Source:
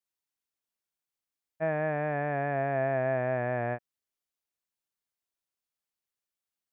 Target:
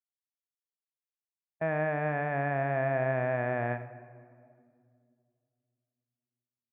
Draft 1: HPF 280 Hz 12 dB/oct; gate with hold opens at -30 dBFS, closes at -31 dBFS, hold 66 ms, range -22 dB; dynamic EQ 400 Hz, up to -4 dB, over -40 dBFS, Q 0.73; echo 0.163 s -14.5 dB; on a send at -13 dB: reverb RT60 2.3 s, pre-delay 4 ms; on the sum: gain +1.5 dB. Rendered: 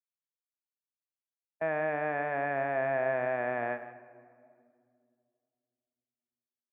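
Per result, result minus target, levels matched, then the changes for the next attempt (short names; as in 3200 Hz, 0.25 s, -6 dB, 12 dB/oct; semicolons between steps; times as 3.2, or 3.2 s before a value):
echo 71 ms late; 250 Hz band -3.5 dB
change: echo 92 ms -14.5 dB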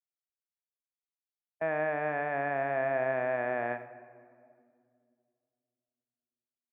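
250 Hz band -3.5 dB
remove: HPF 280 Hz 12 dB/oct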